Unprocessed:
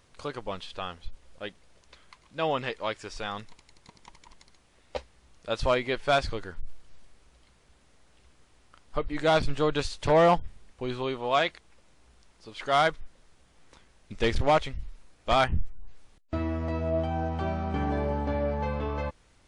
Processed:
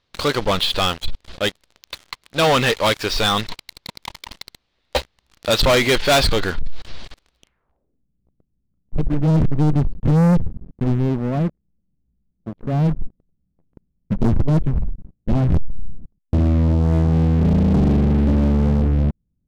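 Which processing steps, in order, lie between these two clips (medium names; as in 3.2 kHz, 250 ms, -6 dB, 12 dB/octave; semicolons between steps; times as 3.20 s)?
low-pass sweep 4.1 kHz -> 190 Hz, 7.38–8.05 s; waveshaping leveller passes 5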